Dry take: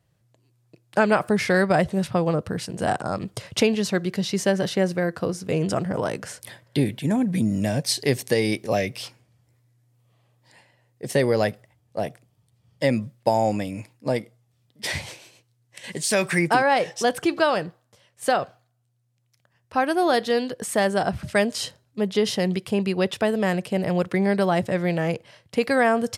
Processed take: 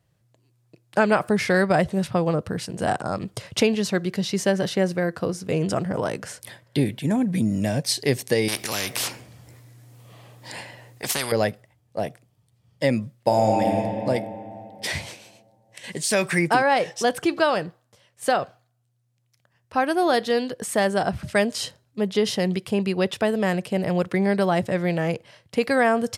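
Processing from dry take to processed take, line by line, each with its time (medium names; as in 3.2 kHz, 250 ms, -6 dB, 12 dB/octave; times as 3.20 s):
8.48–11.32 s: spectrum-flattening compressor 4:1
13.17–13.71 s: reverb throw, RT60 2.9 s, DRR 0 dB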